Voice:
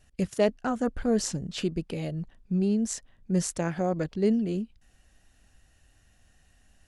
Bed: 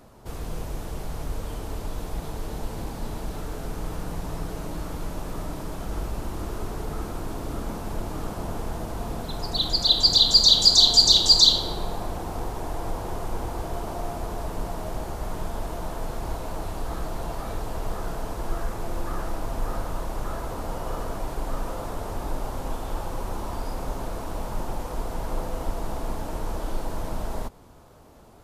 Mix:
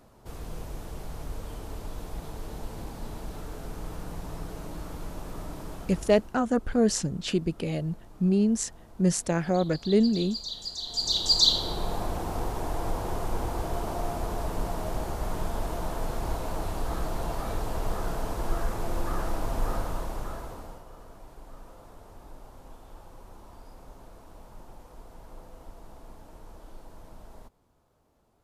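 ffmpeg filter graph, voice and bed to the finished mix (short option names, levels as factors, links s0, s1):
-filter_complex "[0:a]adelay=5700,volume=1.33[s0];[1:a]volume=5.62,afade=t=out:st=5.71:d=0.67:silence=0.177828,afade=t=in:st=10.85:d=1.11:silence=0.0944061,afade=t=out:st=19.7:d=1.15:silence=0.133352[s1];[s0][s1]amix=inputs=2:normalize=0"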